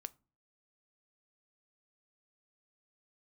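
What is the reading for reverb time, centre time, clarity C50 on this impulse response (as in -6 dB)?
no single decay rate, 2 ms, 25.0 dB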